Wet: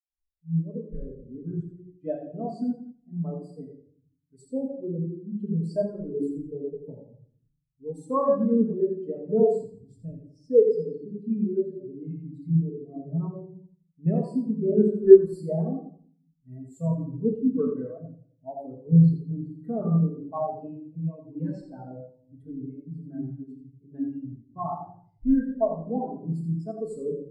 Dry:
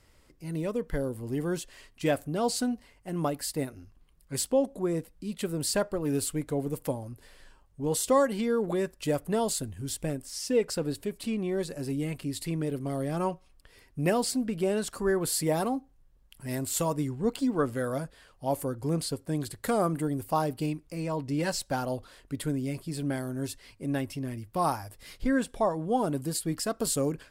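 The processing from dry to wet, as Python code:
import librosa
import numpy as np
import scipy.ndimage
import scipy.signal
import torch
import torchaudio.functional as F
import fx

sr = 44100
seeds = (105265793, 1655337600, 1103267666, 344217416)

p1 = x + fx.echo_feedback(x, sr, ms=85, feedback_pct=54, wet_db=-4.5, dry=0)
p2 = fx.room_shoebox(p1, sr, seeds[0], volume_m3=560.0, walls='mixed', distance_m=1.5)
p3 = fx.spectral_expand(p2, sr, expansion=2.5)
y = p3 * librosa.db_to_amplitude(6.5)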